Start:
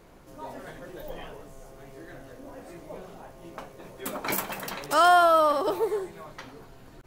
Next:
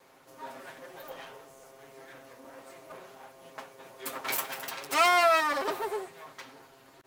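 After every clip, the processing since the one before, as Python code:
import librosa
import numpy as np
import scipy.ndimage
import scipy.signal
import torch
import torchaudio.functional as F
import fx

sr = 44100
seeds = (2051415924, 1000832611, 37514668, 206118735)

y = fx.lower_of_two(x, sr, delay_ms=7.5)
y = fx.highpass(y, sr, hz=560.0, slope=6)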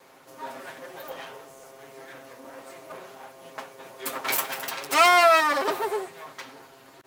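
y = fx.low_shelf(x, sr, hz=65.0, db=-8.5)
y = y * librosa.db_to_amplitude(5.5)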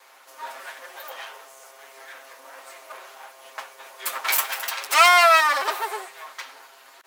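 y = scipy.signal.sosfilt(scipy.signal.butter(2, 880.0, 'highpass', fs=sr, output='sos'), x)
y = y * librosa.db_to_amplitude(4.5)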